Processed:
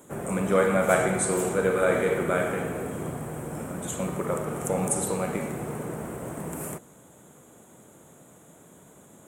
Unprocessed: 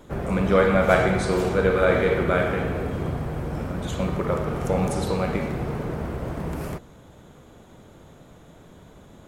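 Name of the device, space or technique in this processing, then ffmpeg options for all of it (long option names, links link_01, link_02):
budget condenser microphone: -af "highpass=110,equalizer=frequency=79:width=1.2:gain=-5.5,highshelf=frequency=6300:width_type=q:width=3:gain=10,volume=-3dB"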